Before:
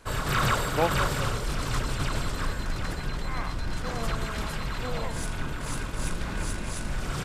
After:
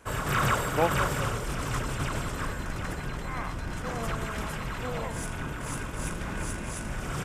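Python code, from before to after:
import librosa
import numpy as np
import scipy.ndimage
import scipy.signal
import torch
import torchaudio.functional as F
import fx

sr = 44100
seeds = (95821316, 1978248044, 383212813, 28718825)

y = fx.highpass(x, sr, hz=55.0, slope=6)
y = fx.peak_eq(y, sr, hz=4200.0, db=-9.5, octaves=0.5)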